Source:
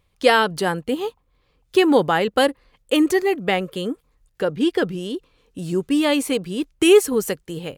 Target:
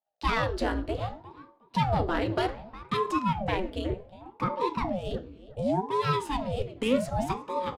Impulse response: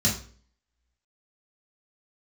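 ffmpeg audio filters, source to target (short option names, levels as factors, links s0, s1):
-filter_complex "[0:a]aemphasis=mode=reproduction:type=50fm,agate=range=0.0224:threshold=0.00282:ratio=3:detection=peak,highshelf=f=9500:g=9.5,asplit=2[s0][s1];[s1]acompressor=threshold=0.0562:ratio=6,volume=1.12[s2];[s0][s2]amix=inputs=2:normalize=0,asoftclip=type=tanh:threshold=0.422,adynamicsmooth=sensitivity=7.5:basefreq=6200,asplit=2[s3][s4];[s4]adelay=361,lowpass=f=2700:p=1,volume=0.158,asplit=2[s5][s6];[s6]adelay=361,lowpass=f=2700:p=1,volume=0.2[s7];[s3][s5][s7]amix=inputs=3:normalize=0,asplit=2[s8][s9];[1:a]atrim=start_sample=2205,highshelf=f=10000:g=-9[s10];[s9][s10]afir=irnorm=-1:irlink=0,volume=0.119[s11];[s8][s11]amix=inputs=2:normalize=0,aeval=exprs='val(0)*sin(2*PI*420*n/s+420*0.75/0.66*sin(2*PI*0.66*n/s))':c=same,volume=0.398"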